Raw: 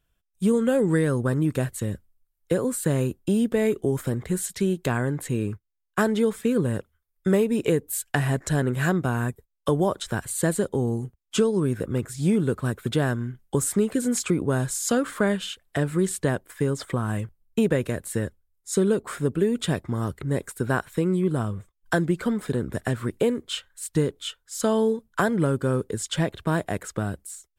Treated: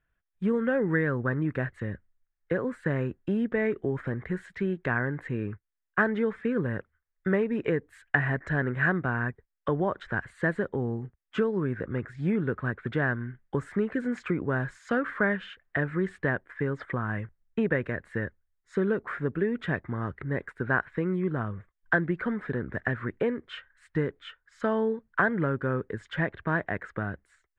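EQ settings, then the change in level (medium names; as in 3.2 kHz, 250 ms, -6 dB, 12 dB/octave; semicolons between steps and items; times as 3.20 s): resonant low-pass 1.8 kHz, resonance Q 3.4; -5.5 dB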